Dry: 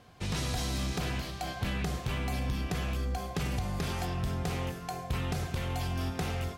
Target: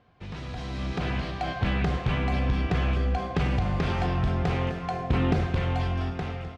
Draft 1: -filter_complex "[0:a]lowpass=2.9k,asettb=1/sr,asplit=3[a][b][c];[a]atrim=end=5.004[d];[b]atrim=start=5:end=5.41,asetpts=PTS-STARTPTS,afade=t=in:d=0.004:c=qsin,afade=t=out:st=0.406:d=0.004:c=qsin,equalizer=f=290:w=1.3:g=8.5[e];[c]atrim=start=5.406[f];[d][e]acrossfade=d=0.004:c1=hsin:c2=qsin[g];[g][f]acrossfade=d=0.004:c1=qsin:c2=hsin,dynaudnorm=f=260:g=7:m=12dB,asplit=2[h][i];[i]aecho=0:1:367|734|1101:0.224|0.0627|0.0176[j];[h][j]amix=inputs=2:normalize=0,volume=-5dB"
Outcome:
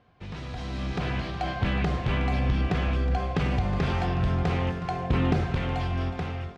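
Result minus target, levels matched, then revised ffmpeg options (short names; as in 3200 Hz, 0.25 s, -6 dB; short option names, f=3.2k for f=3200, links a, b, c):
echo 0.111 s late
-filter_complex "[0:a]lowpass=2.9k,asettb=1/sr,asplit=3[a][b][c];[a]atrim=end=5.004[d];[b]atrim=start=5:end=5.41,asetpts=PTS-STARTPTS,afade=t=in:d=0.004:c=qsin,afade=t=out:st=0.406:d=0.004:c=qsin,equalizer=f=290:w=1.3:g=8.5[e];[c]atrim=start=5.406[f];[d][e]acrossfade=d=0.004:c1=hsin:c2=qsin[g];[g][f]acrossfade=d=0.004:c1=qsin:c2=hsin,dynaudnorm=f=260:g=7:m=12dB,asplit=2[h][i];[i]aecho=0:1:256|512|768:0.224|0.0627|0.0176[j];[h][j]amix=inputs=2:normalize=0,volume=-5dB"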